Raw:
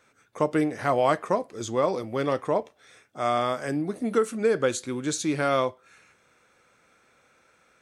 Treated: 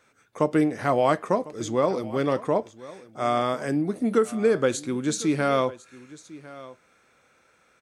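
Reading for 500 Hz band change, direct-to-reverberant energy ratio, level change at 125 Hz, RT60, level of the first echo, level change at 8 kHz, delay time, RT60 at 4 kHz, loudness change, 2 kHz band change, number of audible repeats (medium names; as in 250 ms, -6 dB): +1.5 dB, no reverb, +2.5 dB, no reverb, -19.0 dB, 0.0 dB, 1051 ms, no reverb, +1.5 dB, 0.0 dB, 1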